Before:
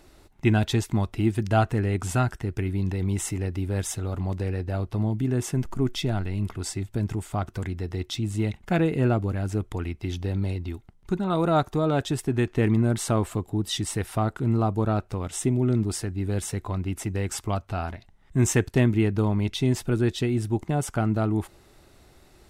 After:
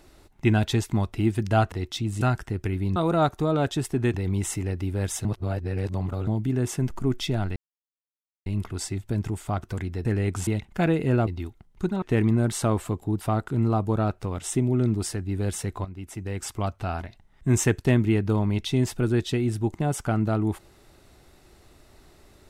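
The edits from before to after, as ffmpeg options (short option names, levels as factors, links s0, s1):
-filter_complex "[0:a]asplit=14[s0][s1][s2][s3][s4][s5][s6][s7][s8][s9][s10][s11][s12][s13];[s0]atrim=end=1.722[s14];[s1]atrim=start=7.898:end=8.392[s15];[s2]atrim=start=2.138:end=2.892[s16];[s3]atrim=start=11.298:end=12.482[s17];[s4]atrim=start=2.888:end=4.002[s18];[s5]atrim=start=3.998:end=5.022,asetpts=PTS-STARTPTS,areverse[s19];[s6]atrim=start=5.018:end=6.31,asetpts=PTS-STARTPTS,afade=t=out:st=1.288:d=0.004:c=hsin,apad=pad_dur=0.9[s20];[s7]atrim=start=6.31:end=7.902,asetpts=PTS-STARTPTS,afade=t=in:d=0.004:c=hsin[s21];[s8]atrim=start=1.718:end=2.142[s22];[s9]atrim=start=8.388:end=9.192[s23];[s10]atrim=start=10.548:end=11.302[s24];[s11]atrim=start=12.478:end=13.672[s25];[s12]atrim=start=14.098:end=16.74,asetpts=PTS-STARTPTS,afade=t=out:st=2.638:d=0.004:c=hsin:silence=0.237137[s26];[s13]atrim=start=16.74,asetpts=PTS-STARTPTS,afade=t=in:d=0.87:silence=0.237137[s27];[s14][s15]acrossfade=d=0.004:c1=hsin:c2=hsin[s28];[s28][s16]acrossfade=d=0.004:c1=hsin:c2=hsin[s29];[s29][s17]acrossfade=d=0.004:c1=hsin:c2=hsin[s30];[s30][s18]acrossfade=d=0.004:c1=hsin:c2=hsin[s31];[s31][s19]acrossfade=d=0.004:c1=hsin:c2=hsin[s32];[s20][s21]concat=n=2:v=0:a=1[s33];[s32][s33]acrossfade=d=0.004:c1=hsin:c2=hsin[s34];[s34][s22]acrossfade=d=0.004:c1=hsin:c2=hsin[s35];[s35][s23]acrossfade=d=0.004:c1=hsin:c2=hsin[s36];[s36][s24]acrossfade=d=0.004:c1=hsin:c2=hsin[s37];[s37][s25]acrossfade=d=0.004:c1=hsin:c2=hsin[s38];[s26][s27]concat=n=2:v=0:a=1[s39];[s38][s39]acrossfade=d=0.004:c1=hsin:c2=hsin"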